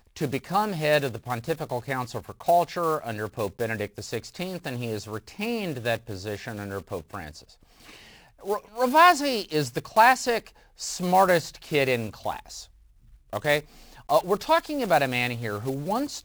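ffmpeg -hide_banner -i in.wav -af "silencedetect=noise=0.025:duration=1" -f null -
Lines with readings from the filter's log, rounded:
silence_start: 7.28
silence_end: 8.46 | silence_duration: 1.18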